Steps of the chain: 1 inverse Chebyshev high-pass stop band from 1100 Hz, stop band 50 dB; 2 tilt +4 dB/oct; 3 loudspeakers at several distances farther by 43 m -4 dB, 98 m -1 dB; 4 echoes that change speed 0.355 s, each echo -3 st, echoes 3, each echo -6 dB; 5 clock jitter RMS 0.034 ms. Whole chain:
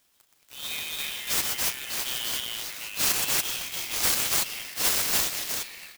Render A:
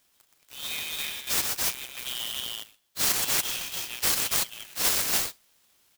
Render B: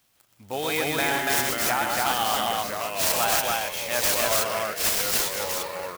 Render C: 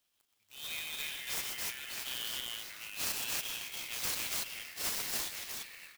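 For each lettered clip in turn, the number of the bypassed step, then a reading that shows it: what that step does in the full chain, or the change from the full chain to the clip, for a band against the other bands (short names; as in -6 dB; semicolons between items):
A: 4, momentary loudness spread change +2 LU; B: 1, 500 Hz band +8.5 dB; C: 2, 2 kHz band +3.0 dB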